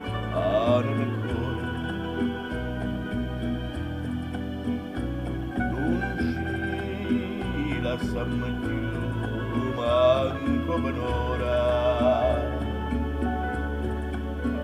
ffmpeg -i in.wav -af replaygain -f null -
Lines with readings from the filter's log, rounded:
track_gain = +7.6 dB
track_peak = 0.244